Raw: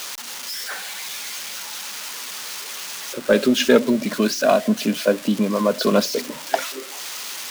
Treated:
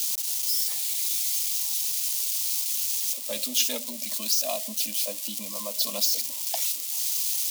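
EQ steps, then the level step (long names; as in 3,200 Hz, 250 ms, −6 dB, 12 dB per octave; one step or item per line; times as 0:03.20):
first-order pre-emphasis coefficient 0.97
mains-hum notches 60/120/180 Hz
phaser with its sweep stopped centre 400 Hz, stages 6
+5.0 dB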